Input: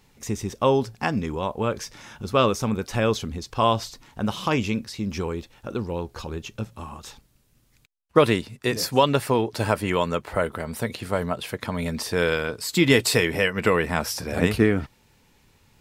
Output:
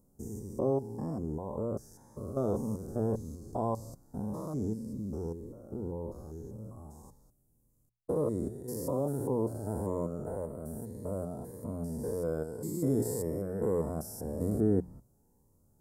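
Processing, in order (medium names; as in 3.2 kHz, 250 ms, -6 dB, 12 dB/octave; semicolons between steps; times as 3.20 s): spectrogram pixelated in time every 200 ms; Chebyshev band-stop 700–9500 Hz, order 2; hum notches 60/120/180 Hz; Shepard-style phaser rising 1.8 Hz; trim -4.5 dB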